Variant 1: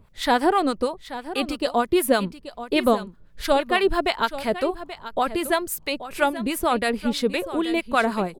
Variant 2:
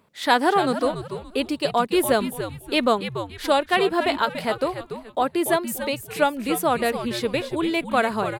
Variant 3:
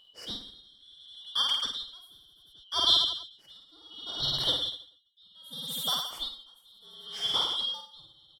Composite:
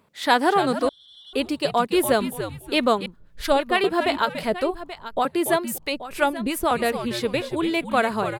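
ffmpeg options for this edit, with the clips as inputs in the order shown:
-filter_complex "[0:a]asplit=3[a][b][c];[1:a]asplit=5[d][e][f][g][h];[d]atrim=end=0.892[i];[2:a]atrim=start=0.888:end=1.332[j];[e]atrim=start=1.328:end=3.062[k];[a]atrim=start=3.058:end=3.842[l];[f]atrim=start=3.838:end=4.432[m];[b]atrim=start=4.428:end=5.252[n];[g]atrim=start=5.248:end=5.782[o];[c]atrim=start=5.778:end=6.712[p];[h]atrim=start=6.708[q];[i][j]acrossfade=d=0.004:c1=hsin:c2=hsin[r];[r][k]acrossfade=d=0.004:c1=hsin:c2=hsin[s];[s][l]acrossfade=d=0.004:c1=hsin:c2=hsin[t];[t][m]acrossfade=d=0.004:c1=hsin:c2=hsin[u];[u][n]acrossfade=d=0.004:c1=hsin:c2=hsin[v];[v][o]acrossfade=d=0.004:c1=hsin:c2=hsin[w];[w][p]acrossfade=d=0.004:c1=hsin:c2=hsin[x];[x][q]acrossfade=d=0.004:c1=hsin:c2=hsin"

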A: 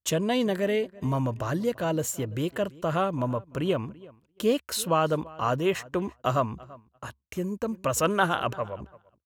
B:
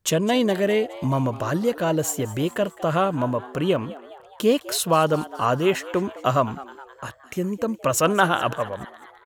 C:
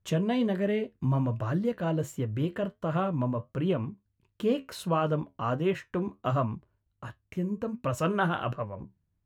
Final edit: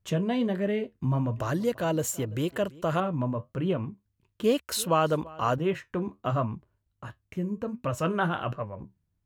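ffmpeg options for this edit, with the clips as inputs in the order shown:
-filter_complex "[0:a]asplit=2[a][b];[2:a]asplit=3[c][d][e];[c]atrim=end=1.372[f];[a]atrim=start=1.368:end=3.002[g];[d]atrim=start=2.998:end=4.442[h];[b]atrim=start=4.438:end=5.582[i];[e]atrim=start=5.578[j];[f][g]acrossfade=d=0.004:c1=hsin:c2=hsin[k];[k][h]acrossfade=d=0.004:c1=hsin:c2=hsin[l];[l][i]acrossfade=d=0.004:c1=hsin:c2=hsin[m];[m][j]acrossfade=d=0.004:c1=hsin:c2=hsin"

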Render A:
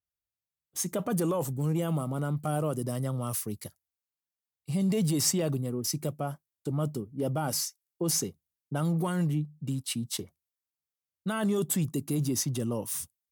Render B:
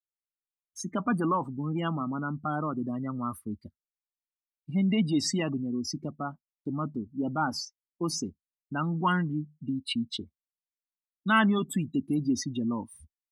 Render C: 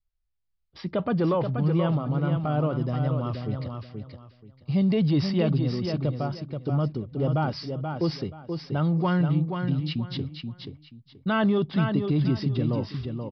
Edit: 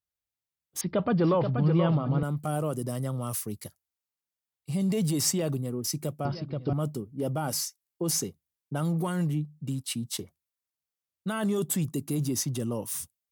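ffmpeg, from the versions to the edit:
-filter_complex "[2:a]asplit=2[a][b];[0:a]asplit=3[c][d][e];[c]atrim=end=0.812[f];[a]atrim=start=0.808:end=2.232[g];[d]atrim=start=2.228:end=6.252[h];[b]atrim=start=6.248:end=6.732[i];[e]atrim=start=6.728[j];[f][g]acrossfade=d=0.004:c1=hsin:c2=hsin[k];[k][h]acrossfade=d=0.004:c1=hsin:c2=hsin[l];[l][i]acrossfade=d=0.004:c1=hsin:c2=hsin[m];[m][j]acrossfade=d=0.004:c1=hsin:c2=hsin"

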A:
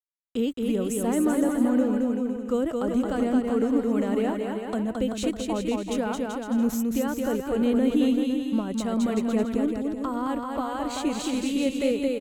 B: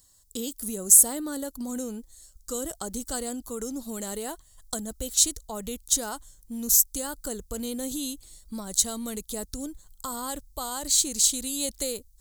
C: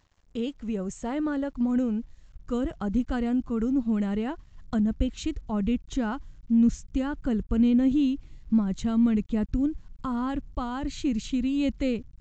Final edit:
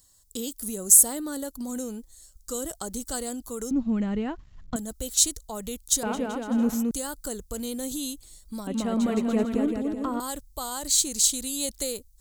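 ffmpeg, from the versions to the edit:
-filter_complex "[0:a]asplit=2[a][b];[1:a]asplit=4[c][d][e][f];[c]atrim=end=3.712[g];[2:a]atrim=start=3.708:end=4.762[h];[d]atrim=start=4.758:end=6.032[i];[a]atrim=start=6.028:end=6.912[j];[e]atrim=start=6.908:end=8.672[k];[b]atrim=start=8.668:end=10.202[l];[f]atrim=start=10.198[m];[g][h]acrossfade=d=0.004:c1=hsin:c2=hsin[n];[n][i]acrossfade=d=0.004:c1=hsin:c2=hsin[o];[o][j]acrossfade=d=0.004:c1=hsin:c2=hsin[p];[p][k]acrossfade=d=0.004:c1=hsin:c2=hsin[q];[q][l]acrossfade=d=0.004:c1=hsin:c2=hsin[r];[r][m]acrossfade=d=0.004:c1=hsin:c2=hsin"

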